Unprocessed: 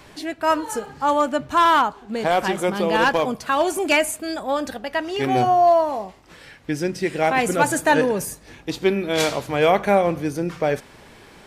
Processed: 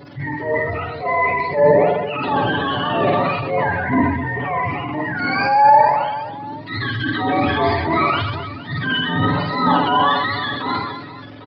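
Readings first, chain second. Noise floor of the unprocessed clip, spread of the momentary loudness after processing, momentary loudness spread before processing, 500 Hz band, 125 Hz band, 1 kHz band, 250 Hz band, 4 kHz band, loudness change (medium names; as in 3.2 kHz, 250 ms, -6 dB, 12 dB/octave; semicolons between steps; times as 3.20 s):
-47 dBFS, 12 LU, 11 LU, 0.0 dB, +8.0 dB, +3.5 dB, +2.0 dB, +3.5 dB, +2.0 dB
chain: spectrum inverted on a logarithmic axis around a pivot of 770 Hz; comb 7 ms, depth 79%; in parallel at -0.5 dB: compression, threshold -27 dBFS, peak gain reduction 18 dB; on the sum: resampled via 11.025 kHz; on a send: reverse bouncing-ball echo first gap 50 ms, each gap 1.6×, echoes 5; on the sum: transient shaper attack -8 dB, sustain +5 dB; trim -2 dB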